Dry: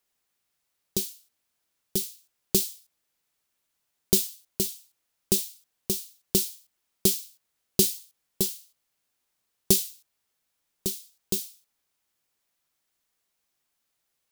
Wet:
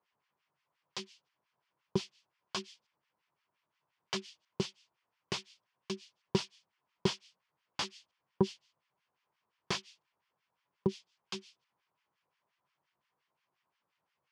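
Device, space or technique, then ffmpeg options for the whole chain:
guitar amplifier with harmonic tremolo: -filter_complex "[0:a]acrossover=split=1200[s0][s1];[s0]aeval=exprs='val(0)*(1-1/2+1/2*cos(2*PI*5.7*n/s))':c=same[s2];[s1]aeval=exprs='val(0)*(1-1/2-1/2*cos(2*PI*5.7*n/s))':c=same[s3];[s2][s3]amix=inputs=2:normalize=0,asoftclip=type=tanh:threshold=0.0891,highpass=110,equalizer=f=140:t=q:w=4:g=5,equalizer=f=260:t=q:w=4:g=-7,equalizer=f=1000:t=q:w=4:g=9,equalizer=f=3900:t=q:w=4:g=-9,lowpass=f=4100:w=0.5412,lowpass=f=4100:w=1.3066,volume=2"

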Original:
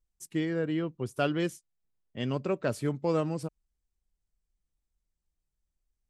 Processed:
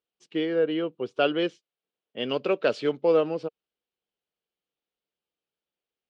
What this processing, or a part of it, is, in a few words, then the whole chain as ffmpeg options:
phone earpiece: -filter_complex "[0:a]highpass=330,equalizer=f=470:t=q:w=4:g=6,equalizer=f=1000:t=q:w=4:g=-4,equalizer=f=1900:t=q:w=4:g=-5,equalizer=f=3000:t=q:w=4:g=5,lowpass=f=4100:w=0.5412,lowpass=f=4100:w=1.3066,asettb=1/sr,asplit=3[s0][s1][s2];[s0]atrim=end=2.294[s3];[s1]atrim=start=2.29:end=2.97,asetpts=PTS-STARTPTS,afade=t=in:d=0.004:c=qsin,afade=t=out:st=0.676:d=0.004:c=qsin,highshelf=f=2500:g=10[s4];[s2]atrim=start=2.966[s5];[s3][s4]acrossfade=d=0.004:c1=hsin:c2=qsin[s6];[s6][s5]acrossfade=d=0.004:c1=qsin:c2=hsin,volume=1.78"

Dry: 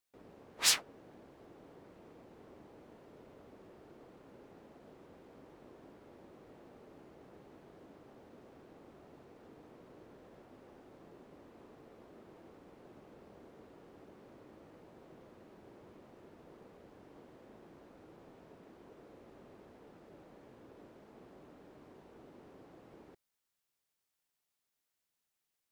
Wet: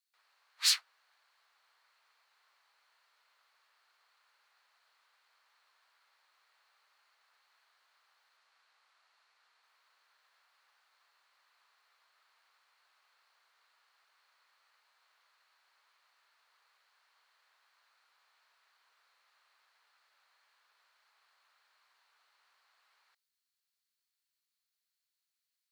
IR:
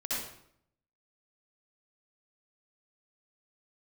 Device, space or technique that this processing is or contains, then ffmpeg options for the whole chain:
headphones lying on a table: -filter_complex "[0:a]asettb=1/sr,asplit=3[s0][s1][s2];[s0]atrim=end=8.374[s3];[s1]atrim=start=8.37:end=9.64,asetpts=PTS-STARTPTS,afade=t=in:d=0.004:c=qsin,afade=t=out:st=1.266:d=0.004:c=qsin,lowpass=10000[s4];[s2]atrim=start=9.636[s5];[s3][s4]acrossfade=d=0.004:c1=hsin:c2=qsin[s6];[s6][s5]acrossfade=d=0.004:c1=qsin:c2=hsin,highpass=f=1200:w=0.5412,highpass=f=1200:w=1.3066,equalizer=f=4300:t=o:w=0.28:g=10,volume=0.708"

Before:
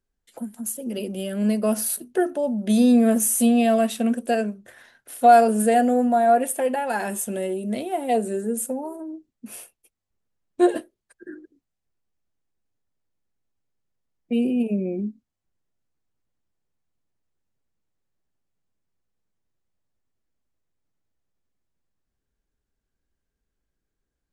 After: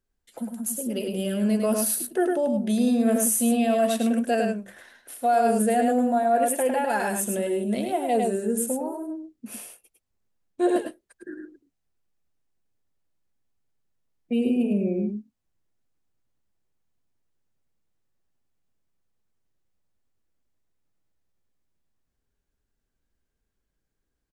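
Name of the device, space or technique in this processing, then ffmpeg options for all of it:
compression on the reversed sound: -af "aecho=1:1:104:0.562,areverse,acompressor=threshold=0.126:ratio=6,areverse"

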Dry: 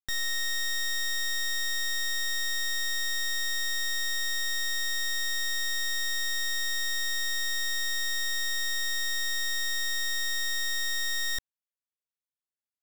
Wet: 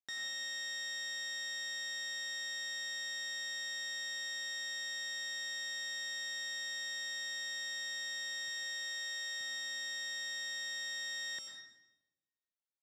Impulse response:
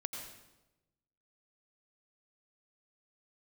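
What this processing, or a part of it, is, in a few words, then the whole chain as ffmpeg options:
supermarket ceiling speaker: -filter_complex "[0:a]asettb=1/sr,asplit=3[s0][s1][s2];[s0]atrim=end=8.484[s3];[s1]atrim=start=8.48:end=9.41,asetpts=PTS-STARTPTS,afade=t=in:d=0.004:c=qsin,afade=t=out:st=0.926:d=0.004:c=qsin,highpass=f=260:w=0.5412,highpass=f=260:w=1.3066[s4];[s2]atrim=start=9.406[s5];[s3][s4]acrossfade=d=0.004:c1=hsin:c2=qsin[s6];[s6][s5]acrossfade=d=0.004:c1=qsin:c2=hsin,highpass=250,lowpass=6600[s7];[1:a]atrim=start_sample=2205[s8];[s7][s8]afir=irnorm=-1:irlink=0,volume=0.473"

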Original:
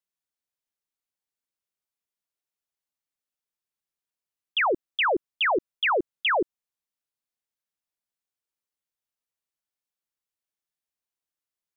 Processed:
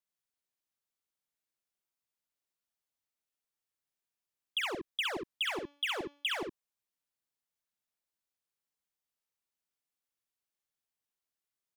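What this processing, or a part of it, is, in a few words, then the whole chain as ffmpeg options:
one-band saturation: -filter_complex "[0:a]acrossover=split=240|3100[s0][s1][s2];[s1]asoftclip=type=tanh:threshold=0.0133[s3];[s0][s3][s2]amix=inputs=3:normalize=0,asplit=3[s4][s5][s6];[s4]afade=t=out:st=5.44:d=0.02[s7];[s5]bandreject=f=287.1:t=h:w=4,bandreject=f=574.2:t=h:w=4,bandreject=f=861.3:t=h:w=4,bandreject=f=1148.4:t=h:w=4,bandreject=f=1435.5:t=h:w=4,bandreject=f=1722.6:t=h:w=4,bandreject=f=2009.7:t=h:w=4,bandreject=f=2296.8:t=h:w=4,bandreject=f=2583.9:t=h:w=4,bandreject=f=2871:t=h:w=4,bandreject=f=3158.1:t=h:w=4,bandreject=f=3445.2:t=h:w=4,bandreject=f=3732.3:t=h:w=4,bandreject=f=4019.4:t=h:w=4,bandreject=f=4306.5:t=h:w=4,bandreject=f=4593.6:t=h:w=4,bandreject=f=4880.7:t=h:w=4,bandreject=f=5167.8:t=h:w=4,bandreject=f=5454.9:t=h:w=4,bandreject=f=5742:t=h:w=4,bandreject=f=6029.1:t=h:w=4,bandreject=f=6316.2:t=h:w=4,bandreject=f=6603.3:t=h:w=4,afade=t=in:st=5.44:d=0.02,afade=t=out:st=6.39:d=0.02[s8];[s6]afade=t=in:st=6.39:d=0.02[s9];[s7][s8][s9]amix=inputs=3:normalize=0,aecho=1:1:47|65:0.237|0.708,volume=0.708"

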